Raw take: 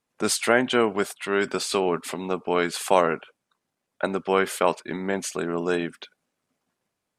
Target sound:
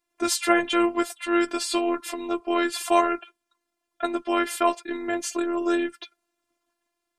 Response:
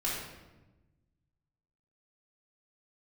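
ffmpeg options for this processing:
-af "flanger=delay=5.4:depth=1.6:regen=25:speed=0.36:shape=sinusoidal,afftfilt=real='hypot(re,im)*cos(PI*b)':imag='0':win_size=512:overlap=0.75,volume=7dB"

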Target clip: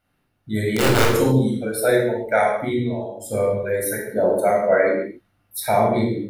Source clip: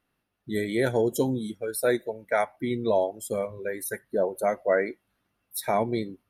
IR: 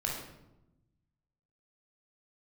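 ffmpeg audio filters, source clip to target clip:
-filter_complex "[0:a]asettb=1/sr,asplit=3[link_01][link_02][link_03];[link_01]atrim=end=0.584[link_04];[link_02]atrim=start=0.58:end=1.18,asetpts=PTS-STARTPTS,afade=type=in:duration=0.004:curve=qsin,afade=type=out:start_time=0.596:duration=0.004:curve=qsin,aeval=exprs='(mod(6.31*val(0)+1,2)-1)/6.31':channel_layout=same[link_05];[link_03]atrim=start=1.176[link_06];[link_04][link_05]acrossfade=duration=0.004:curve1=hsin:curve2=qsin[link_07];[link_07][link_06]acrossfade=duration=0.004:curve1=qsin:curve2=hsin,asettb=1/sr,asplit=3[link_08][link_09][link_10];[link_08]atrim=end=2.784[link_11];[link_09]atrim=start=2.78:end=3.26,asetpts=PTS-STARTPTS,afade=type=in:duration=0.004:curve=qsin,afade=type=out:start_time=0.476:duration=0.004:curve=qsin,acompressor=threshold=-34dB:ratio=10[link_12];[link_10]atrim=start=3.256[link_13];[link_11][link_12]acrossfade=duration=0.004:curve1=hsin:curve2=qsin[link_14];[link_14][link_13]acrossfade=duration=0.004:curve1=qsin:curve2=hsin,asettb=1/sr,asplit=3[link_15][link_16][link_17];[link_15]atrim=end=3.764[link_18];[link_16]atrim=start=3.76:end=4.37,asetpts=PTS-STARTPTS,afade=type=in:duration=0.004:curve=qsin,afade=type=out:start_time=0.606:duration=0.004:curve=qsin,highshelf=frequency=7600:gain=5[link_19];[link_17]atrim=start=4.366[link_20];[link_18][link_19]acrossfade=duration=0.004:curve1=hsin:curve2=qsin[link_21];[link_21][link_20]acrossfade=duration=0.004:curve1=qsin:curve2=hsin[link_22];[1:a]atrim=start_sample=2205,afade=type=out:start_time=0.33:duration=0.01,atrim=end_sample=14994[link_23];[link_22][link_23]afir=irnorm=-1:irlink=0,volume=2.5dB"

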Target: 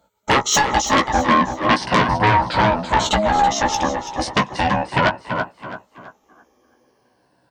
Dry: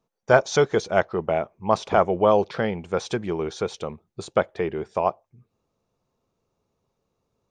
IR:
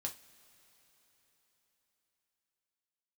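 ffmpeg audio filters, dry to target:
-filter_complex "[0:a]afftfilt=real='re*pow(10,18/40*sin(2*PI*(1*log(max(b,1)*sr/1024/100)/log(2)-(-0.37)*(pts-256)/sr)))':imag='im*pow(10,18/40*sin(2*PI*(1*log(max(b,1)*sr/1024/100)/log(2)-(-0.37)*(pts-256)/sr)))':win_size=1024:overlap=0.75,aeval=exprs='val(0)*sin(2*PI*420*n/s)':channel_layout=same,asplit=2[link_01][link_02];[link_02]aecho=0:1:337|674|1011:0.168|0.0504|0.0151[link_03];[link_01][link_03]amix=inputs=2:normalize=0,acompressor=threshold=-20dB:ratio=4,aeval=exprs='0.316*sin(PI/2*2.82*val(0)/0.316)':channel_layout=same,asplit=2[link_04][link_05];[link_05]adelay=16,volume=-6dB[link_06];[link_04][link_06]amix=inputs=2:normalize=0,adynamicequalizer=threshold=0.00794:dfrequency=2600:dqfactor=6.3:tfrequency=2600:tqfactor=6.3:attack=5:release=100:ratio=0.375:range=2.5:mode=cutabove:tftype=bell,highpass=frequency=110:poles=1,asplit=2[link_07][link_08];[link_08]asplit=3[link_09][link_10][link_11];[link_09]adelay=328,afreqshift=64,volume=-12dB[link_12];[link_10]adelay=656,afreqshift=128,volume=-21.9dB[link_13];[link_11]adelay=984,afreqshift=192,volume=-31.8dB[link_14];[link_12][link_13][link_14]amix=inputs=3:normalize=0[link_15];[link_07][link_15]amix=inputs=2:normalize=0"

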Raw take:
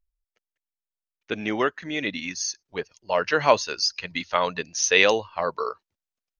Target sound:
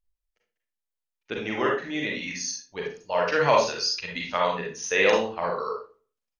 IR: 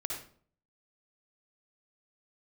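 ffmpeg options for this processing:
-filter_complex "[0:a]asettb=1/sr,asplit=3[link_01][link_02][link_03];[link_01]atrim=end=4.554[link_04];[link_02]atrim=start=4.55:end=5.06,asetpts=PTS-STARTPTS,afade=type=in:duration=0.004:curve=qsin,afade=type=out:start_time=0.506:duration=0.004:curve=qsin,equalizer=frequency=4700:width_type=o:width=1.1:gain=-11.5[link_05];[link_03]atrim=start=5.056[link_06];[link_04][link_05]acrossfade=duration=0.004:curve1=hsin:curve2=qsin[link_07];[link_07][link_06]acrossfade=duration=0.004:curve1=qsin:curve2=hsin,aecho=1:1:59|63:0.126|0.119[link_08];[1:a]atrim=start_sample=2205,asetrate=61740,aresample=44100[link_09];[link_08][link_09]afir=irnorm=-1:irlink=0"

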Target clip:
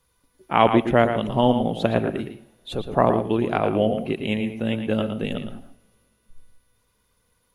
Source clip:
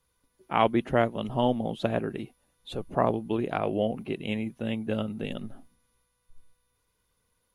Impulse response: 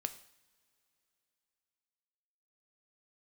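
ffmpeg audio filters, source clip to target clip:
-filter_complex "[0:a]asplit=2[link_01][link_02];[1:a]atrim=start_sample=2205,lowpass=4900,adelay=114[link_03];[link_02][link_03]afir=irnorm=-1:irlink=0,volume=-7dB[link_04];[link_01][link_04]amix=inputs=2:normalize=0,volume=6dB"

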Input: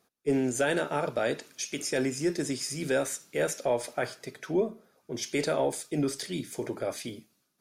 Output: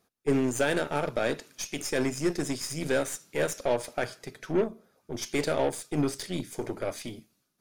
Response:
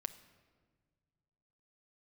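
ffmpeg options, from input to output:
-af "lowshelf=frequency=100:gain=9.5,aeval=exprs='0.168*(cos(1*acos(clip(val(0)/0.168,-1,1)))-cos(1*PI/2))+0.0168*(cos(3*acos(clip(val(0)/0.168,-1,1)))-cos(3*PI/2))+0.00944*(cos(8*acos(clip(val(0)/0.168,-1,1)))-cos(8*PI/2))':channel_layout=same,volume=1.5dB"

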